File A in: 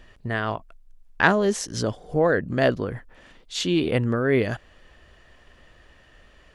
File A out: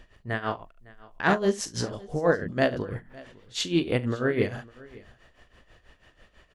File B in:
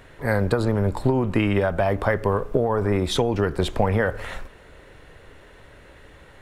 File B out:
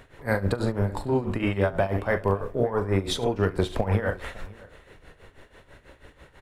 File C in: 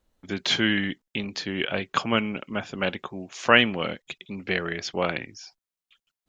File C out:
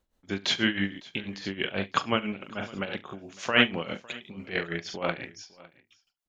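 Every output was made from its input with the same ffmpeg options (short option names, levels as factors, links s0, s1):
-filter_complex "[0:a]asplit=2[s0][s1];[s1]aecho=0:1:41|71:0.335|0.299[s2];[s0][s2]amix=inputs=2:normalize=0,tremolo=f=6.1:d=0.79,asplit=2[s3][s4];[s4]aecho=0:1:556:0.0794[s5];[s3][s5]amix=inputs=2:normalize=0,volume=0.891"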